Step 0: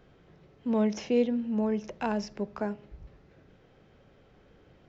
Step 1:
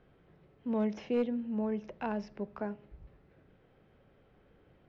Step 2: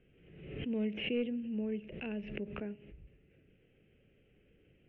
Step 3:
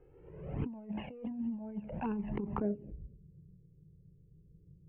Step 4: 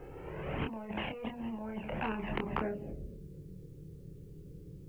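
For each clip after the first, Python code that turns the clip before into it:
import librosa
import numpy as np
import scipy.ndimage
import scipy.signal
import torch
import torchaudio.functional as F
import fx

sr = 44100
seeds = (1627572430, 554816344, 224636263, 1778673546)

y1 = scipy.signal.sosfilt(scipy.signal.butter(2, 3200.0, 'lowpass', fs=sr, output='sos'), x)
y1 = np.clip(10.0 ** (18.0 / 20.0) * y1, -1.0, 1.0) / 10.0 ** (18.0 / 20.0)
y1 = y1 * librosa.db_to_amplitude(-5.0)
y2 = fx.curve_eq(y1, sr, hz=(450.0, 990.0, 2800.0, 4800.0), db=(0, -19, 10, -28))
y2 = fx.pre_swell(y2, sr, db_per_s=57.0)
y2 = y2 * librosa.db_to_amplitude(-3.0)
y3 = fx.over_compress(y2, sr, threshold_db=-39.0, ratio=-0.5)
y3 = fx.filter_sweep_lowpass(y3, sr, from_hz=960.0, to_hz=170.0, start_s=2.54, end_s=3.26, q=5.0)
y3 = fx.env_flanger(y3, sr, rest_ms=2.4, full_db=-28.0)
y3 = y3 * librosa.db_to_amplitude(5.0)
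y4 = fx.doubler(y3, sr, ms=27.0, db=-5)
y4 = fx.spectral_comp(y4, sr, ratio=2.0)
y4 = y4 * librosa.db_to_amplitude(4.0)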